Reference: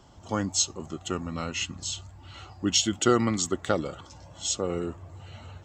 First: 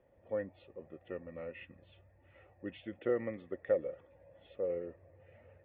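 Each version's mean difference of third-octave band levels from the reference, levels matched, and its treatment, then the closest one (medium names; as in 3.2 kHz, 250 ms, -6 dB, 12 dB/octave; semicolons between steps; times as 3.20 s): 9.0 dB: cascade formant filter e; trim +1 dB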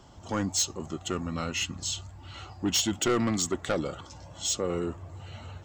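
3.0 dB: saturation -21.5 dBFS, distortion -10 dB; trim +1.5 dB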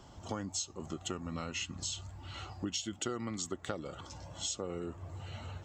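5.5 dB: compression 6:1, threshold -35 dBFS, peak gain reduction 17.5 dB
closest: second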